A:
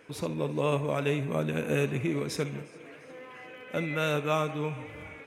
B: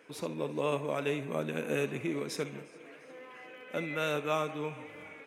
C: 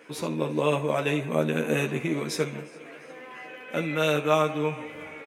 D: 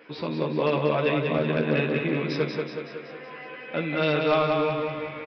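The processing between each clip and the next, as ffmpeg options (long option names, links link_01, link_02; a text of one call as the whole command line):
ffmpeg -i in.wav -af "highpass=200,volume=-3dB" out.wav
ffmpeg -i in.wav -filter_complex "[0:a]asplit=2[link_01][link_02];[link_02]adelay=13,volume=-4dB[link_03];[link_01][link_03]amix=inputs=2:normalize=0,volume=6dB" out.wav
ffmpeg -i in.wav -af "aresample=11025,asoftclip=type=hard:threshold=-15.5dB,aresample=44100,aecho=1:1:187|374|561|748|935|1122|1309|1496:0.596|0.334|0.187|0.105|0.0586|0.0328|0.0184|0.0103" out.wav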